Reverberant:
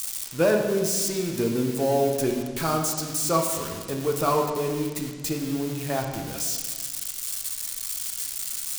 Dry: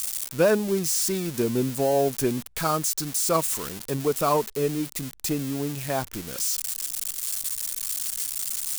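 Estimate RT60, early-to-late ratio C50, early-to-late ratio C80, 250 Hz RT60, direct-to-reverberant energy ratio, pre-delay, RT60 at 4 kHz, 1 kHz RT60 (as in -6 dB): 1.6 s, 4.5 dB, 6.0 dB, 1.8 s, 1.5 dB, 3 ms, 1.4 s, 1.4 s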